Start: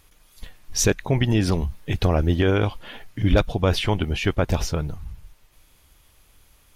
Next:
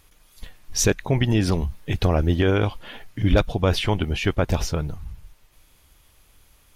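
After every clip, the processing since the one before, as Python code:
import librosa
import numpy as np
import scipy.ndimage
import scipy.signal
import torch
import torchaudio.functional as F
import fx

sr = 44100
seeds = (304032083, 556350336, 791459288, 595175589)

y = x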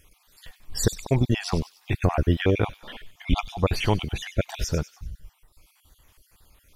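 y = fx.spec_dropout(x, sr, seeds[0], share_pct=44)
y = fx.echo_wet_highpass(y, sr, ms=97, feedback_pct=42, hz=3600.0, wet_db=-9.0)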